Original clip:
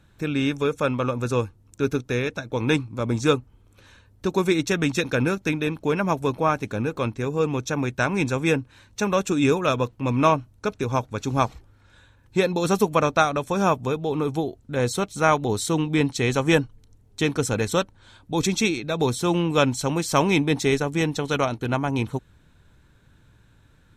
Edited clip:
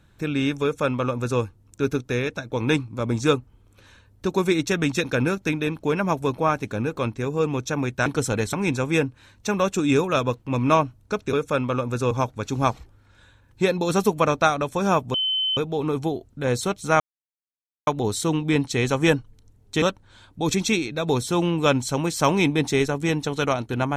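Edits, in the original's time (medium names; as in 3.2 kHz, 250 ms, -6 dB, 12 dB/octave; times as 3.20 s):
0.63–1.41 s: copy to 10.86 s
13.89 s: add tone 3.06 kHz -20.5 dBFS 0.43 s
15.32 s: insert silence 0.87 s
17.27–17.74 s: move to 8.06 s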